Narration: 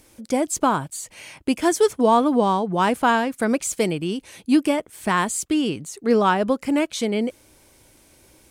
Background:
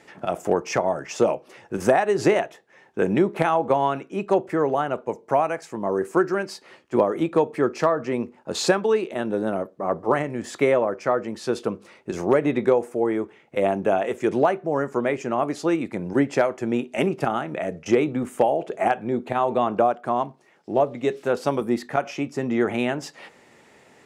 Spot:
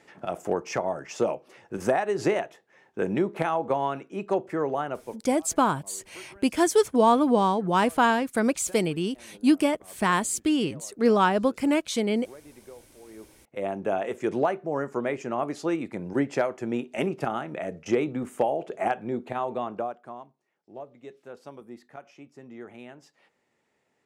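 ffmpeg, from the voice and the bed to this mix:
ffmpeg -i stem1.wav -i stem2.wav -filter_complex "[0:a]adelay=4950,volume=-2.5dB[link_01];[1:a]volume=17.5dB,afade=type=out:start_time=4.88:duration=0.47:silence=0.0749894,afade=type=in:start_time=13.06:duration=0.97:silence=0.0707946,afade=type=out:start_time=19.09:duration=1.15:silence=0.16788[link_02];[link_01][link_02]amix=inputs=2:normalize=0" out.wav

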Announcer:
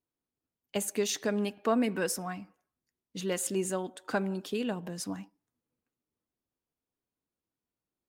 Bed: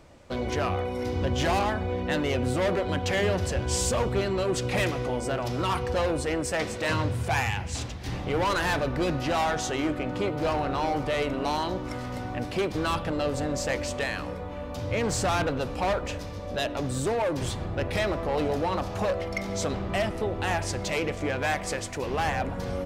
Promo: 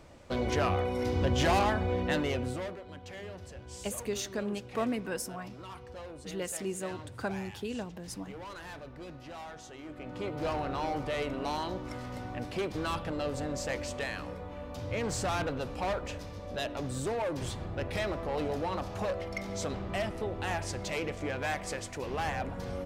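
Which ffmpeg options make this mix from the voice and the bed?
ffmpeg -i stem1.wav -i stem2.wav -filter_complex "[0:a]adelay=3100,volume=-4.5dB[link_01];[1:a]volume=11.5dB,afade=type=out:start_time=1.99:duration=0.78:silence=0.133352,afade=type=in:start_time=9.85:duration=0.58:silence=0.237137[link_02];[link_01][link_02]amix=inputs=2:normalize=0" out.wav

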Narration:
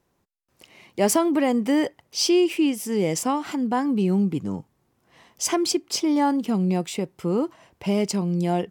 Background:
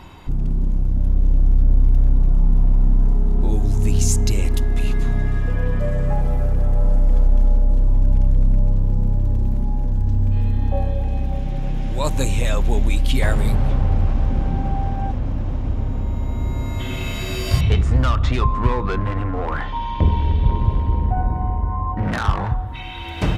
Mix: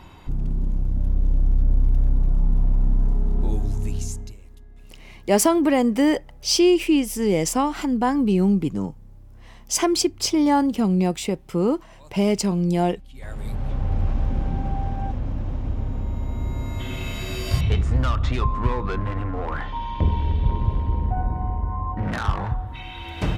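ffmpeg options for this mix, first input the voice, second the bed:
ffmpeg -i stem1.wav -i stem2.wav -filter_complex "[0:a]adelay=4300,volume=2.5dB[link_01];[1:a]volume=19.5dB,afade=type=out:start_time=3.48:duration=0.9:silence=0.0668344,afade=type=in:start_time=13.13:duration=0.95:silence=0.0668344[link_02];[link_01][link_02]amix=inputs=2:normalize=0" out.wav

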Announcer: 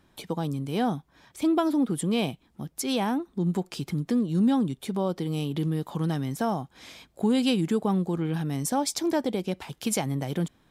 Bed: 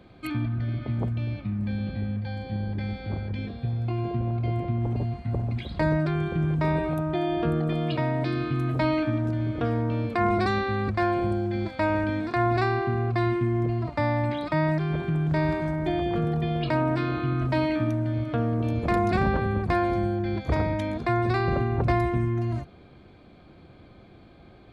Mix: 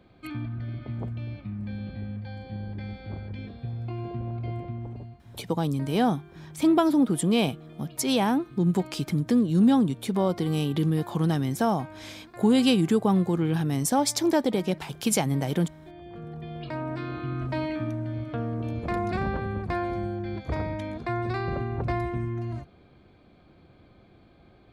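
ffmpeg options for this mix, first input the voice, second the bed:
ffmpeg -i stem1.wav -i stem2.wav -filter_complex "[0:a]adelay=5200,volume=3dB[link_01];[1:a]volume=9.5dB,afade=type=out:start_time=4.51:duration=0.74:silence=0.188365,afade=type=in:start_time=15.95:duration=1.42:silence=0.177828[link_02];[link_01][link_02]amix=inputs=2:normalize=0" out.wav

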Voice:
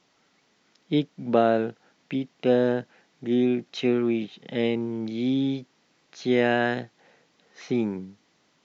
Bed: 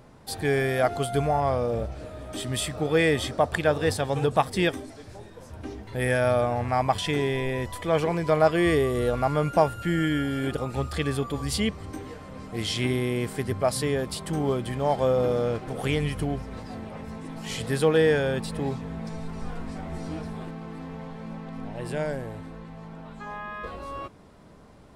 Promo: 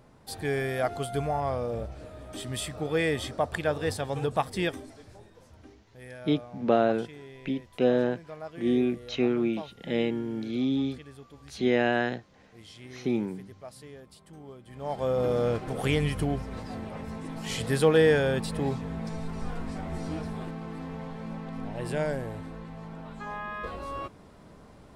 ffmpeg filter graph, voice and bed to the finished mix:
ffmpeg -i stem1.wav -i stem2.wav -filter_complex "[0:a]adelay=5350,volume=-2.5dB[link_01];[1:a]volume=15.5dB,afade=type=out:start_time=4.89:duration=0.97:silence=0.16788,afade=type=in:start_time=14.66:duration=0.82:silence=0.0944061[link_02];[link_01][link_02]amix=inputs=2:normalize=0" out.wav

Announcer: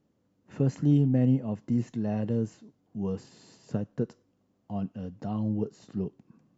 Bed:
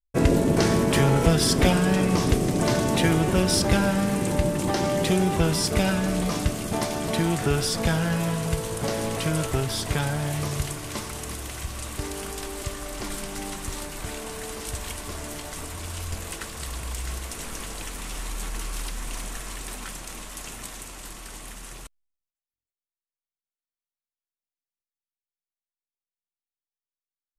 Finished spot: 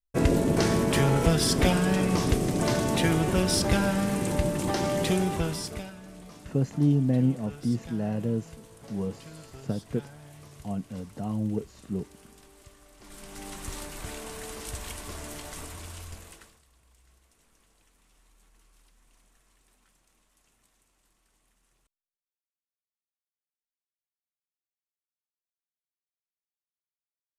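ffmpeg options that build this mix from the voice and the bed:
ffmpeg -i stem1.wav -i stem2.wav -filter_complex "[0:a]adelay=5950,volume=0dB[link_01];[1:a]volume=13.5dB,afade=type=out:start_time=5.12:duration=0.79:silence=0.125893,afade=type=in:start_time=13:duration=0.69:silence=0.149624,afade=type=out:start_time=15.59:duration=1.03:silence=0.0501187[link_02];[link_01][link_02]amix=inputs=2:normalize=0" out.wav

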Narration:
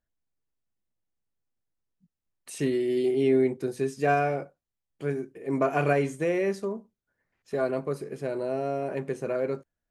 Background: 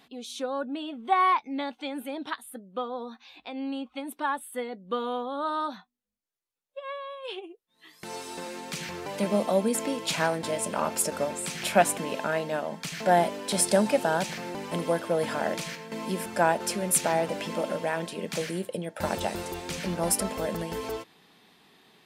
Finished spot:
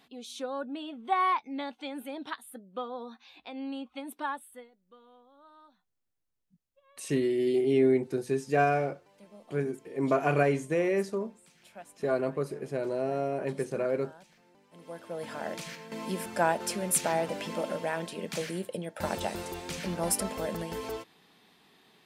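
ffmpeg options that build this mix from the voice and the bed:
ffmpeg -i stem1.wav -i stem2.wav -filter_complex "[0:a]adelay=4500,volume=-1dB[link_01];[1:a]volume=20dB,afade=type=out:start_time=4.22:duration=0.49:silence=0.0707946,afade=type=in:start_time=14.72:duration=1.3:silence=0.0630957[link_02];[link_01][link_02]amix=inputs=2:normalize=0" out.wav

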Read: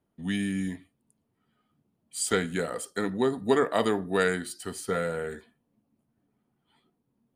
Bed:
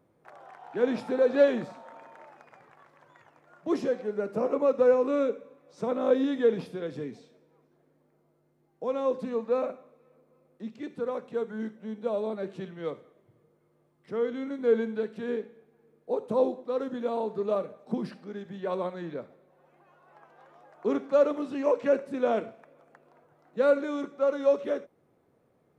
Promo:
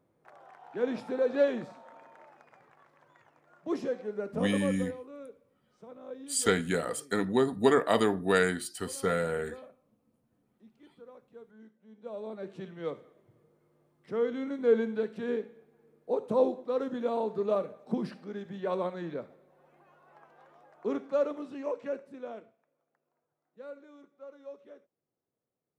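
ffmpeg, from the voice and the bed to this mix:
ffmpeg -i stem1.wav -i stem2.wav -filter_complex "[0:a]adelay=4150,volume=0dB[link_01];[1:a]volume=14.5dB,afade=type=out:start_time=4.44:duration=0.45:silence=0.177828,afade=type=in:start_time=11.87:duration=1.16:silence=0.112202,afade=type=out:start_time=19.78:duration=2.8:silence=0.0841395[link_02];[link_01][link_02]amix=inputs=2:normalize=0" out.wav

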